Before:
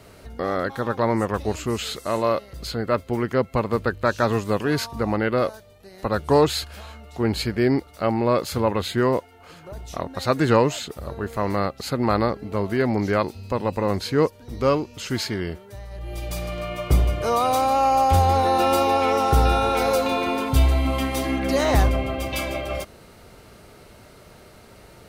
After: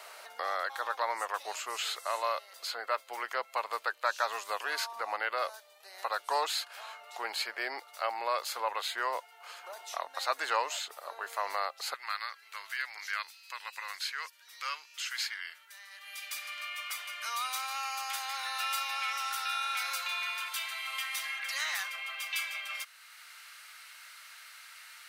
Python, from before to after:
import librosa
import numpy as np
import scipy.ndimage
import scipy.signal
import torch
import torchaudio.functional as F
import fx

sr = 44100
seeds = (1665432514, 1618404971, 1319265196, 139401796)

y = fx.highpass(x, sr, hz=fx.steps((0.0, 730.0), (11.94, 1500.0)), slope=24)
y = fx.band_squash(y, sr, depth_pct=40)
y = F.gain(torch.from_numpy(y), -4.0).numpy()